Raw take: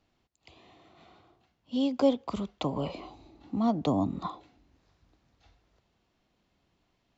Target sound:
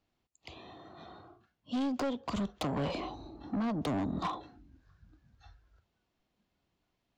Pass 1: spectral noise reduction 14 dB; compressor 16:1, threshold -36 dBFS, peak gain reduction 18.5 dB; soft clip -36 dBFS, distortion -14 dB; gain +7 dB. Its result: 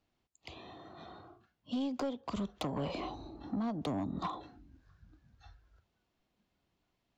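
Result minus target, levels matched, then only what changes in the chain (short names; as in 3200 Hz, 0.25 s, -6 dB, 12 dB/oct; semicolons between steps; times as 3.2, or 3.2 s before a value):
compressor: peak gain reduction +6.5 dB
change: compressor 16:1, threshold -29 dBFS, peak gain reduction 12 dB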